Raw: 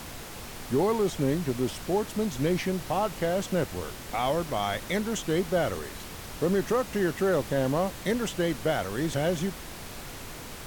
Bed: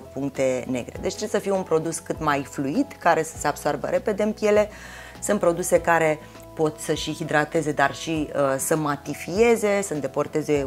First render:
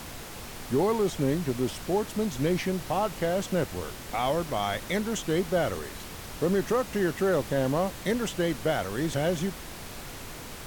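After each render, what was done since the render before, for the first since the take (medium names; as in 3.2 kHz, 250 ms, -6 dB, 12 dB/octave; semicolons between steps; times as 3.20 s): no audible change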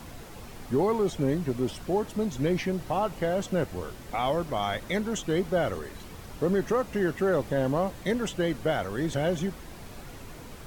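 noise reduction 8 dB, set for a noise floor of -41 dBFS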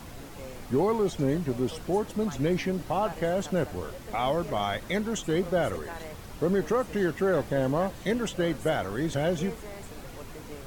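add bed -22.5 dB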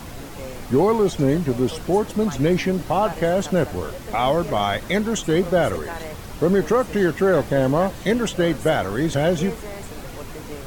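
trim +7.5 dB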